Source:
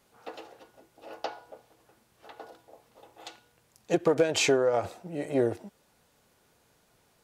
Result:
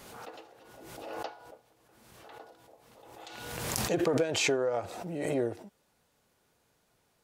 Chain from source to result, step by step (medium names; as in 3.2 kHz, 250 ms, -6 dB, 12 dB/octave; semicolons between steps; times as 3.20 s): swell ahead of each attack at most 33 dB/s; trim -5.5 dB